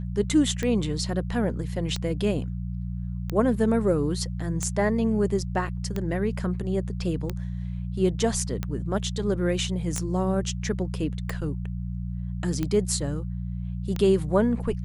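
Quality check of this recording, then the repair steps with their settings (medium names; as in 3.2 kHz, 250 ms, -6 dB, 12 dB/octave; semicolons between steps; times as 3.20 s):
hum 60 Hz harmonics 3 -31 dBFS
tick 45 rpm -15 dBFS
9.98 s: pop -14 dBFS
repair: de-click; de-hum 60 Hz, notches 3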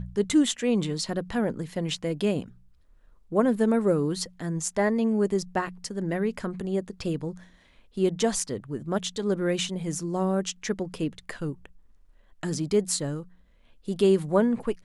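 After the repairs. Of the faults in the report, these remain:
nothing left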